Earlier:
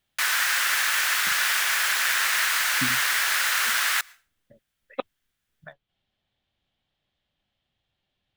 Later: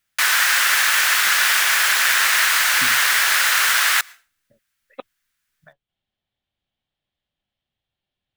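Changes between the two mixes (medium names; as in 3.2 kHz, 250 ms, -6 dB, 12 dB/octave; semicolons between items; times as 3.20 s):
speech -5.5 dB; background +6.5 dB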